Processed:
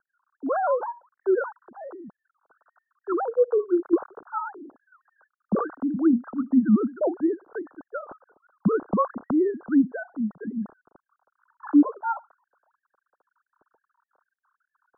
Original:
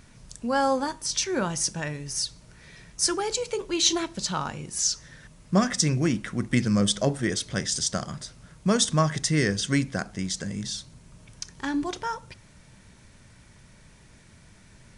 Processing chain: sine-wave speech; steep low-pass 1500 Hz 96 dB/oct; gain +1.5 dB

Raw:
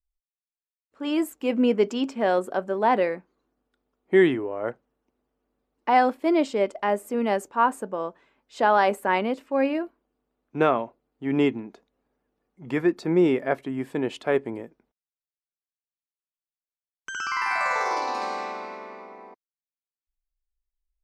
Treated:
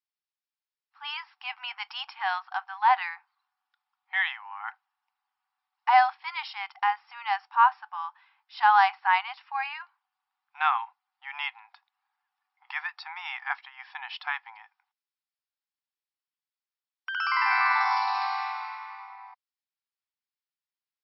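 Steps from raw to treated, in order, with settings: brick-wall FIR band-pass 740–5600 Hz; gain +2 dB

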